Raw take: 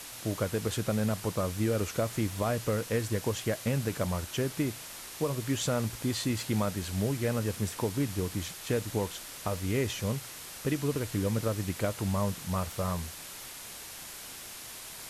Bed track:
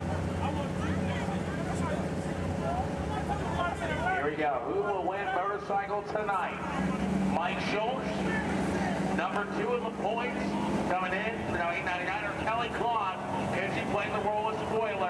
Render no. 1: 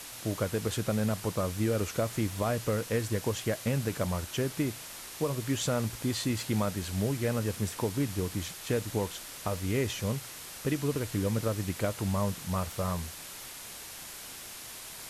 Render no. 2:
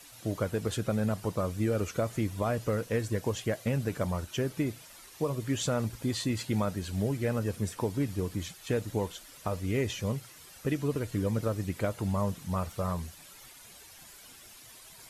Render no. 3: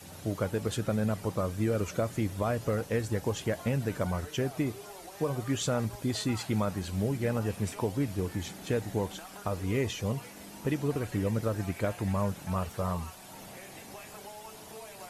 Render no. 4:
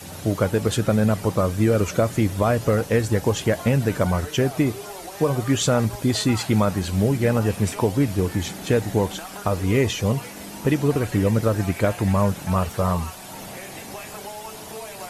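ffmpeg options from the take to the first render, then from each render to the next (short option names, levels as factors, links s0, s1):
-af anull
-af "afftdn=nr=11:nf=-44"
-filter_complex "[1:a]volume=0.141[s0];[0:a][s0]amix=inputs=2:normalize=0"
-af "volume=3.16"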